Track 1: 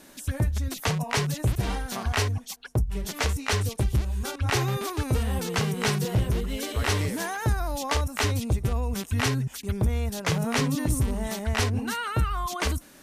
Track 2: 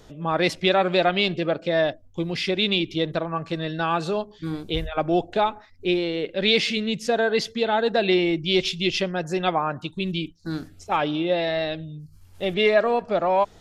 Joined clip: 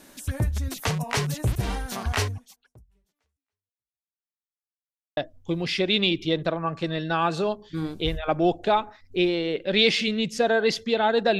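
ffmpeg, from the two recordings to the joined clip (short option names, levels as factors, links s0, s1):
-filter_complex "[0:a]apad=whole_dur=11.39,atrim=end=11.39,asplit=2[s0][s1];[s0]atrim=end=4.19,asetpts=PTS-STARTPTS,afade=t=out:st=2.23:d=1.96:c=exp[s2];[s1]atrim=start=4.19:end=5.17,asetpts=PTS-STARTPTS,volume=0[s3];[1:a]atrim=start=1.86:end=8.08,asetpts=PTS-STARTPTS,afade=t=in:d=0.004:c=hsin[s4];[s2][s3][s4]concat=n=3:v=0:a=1"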